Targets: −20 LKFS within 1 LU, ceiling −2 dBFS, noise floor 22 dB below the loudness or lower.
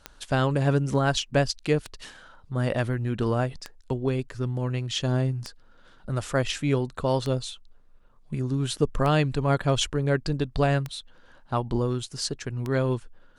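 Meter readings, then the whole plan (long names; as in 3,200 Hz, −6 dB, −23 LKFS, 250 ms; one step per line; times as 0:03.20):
number of clicks 8; integrated loudness −26.5 LKFS; sample peak −9.5 dBFS; target loudness −20.0 LKFS
→ click removal
level +6.5 dB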